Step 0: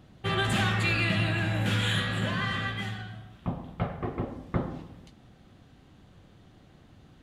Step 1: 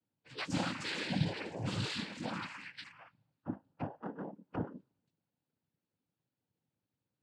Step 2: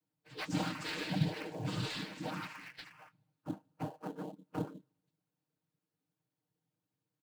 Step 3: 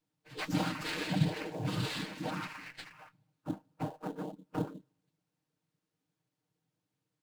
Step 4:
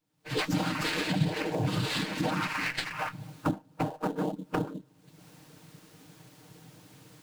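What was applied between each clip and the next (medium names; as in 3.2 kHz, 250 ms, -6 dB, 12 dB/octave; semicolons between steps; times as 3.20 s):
spectral noise reduction 28 dB; dynamic bell 2.1 kHz, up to -8 dB, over -45 dBFS, Q 1.2; noise-vocoded speech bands 8; trim -4 dB
comb 6.5 ms, depth 80%; in parallel at -10 dB: sample-rate reducer 3.7 kHz, jitter 20%; on the sum: bass shelf 110 Hz -4.5 dB; trim -4 dB
sliding maximum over 3 samples; trim +3 dB
recorder AGC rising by 48 dB/s; trim +1.5 dB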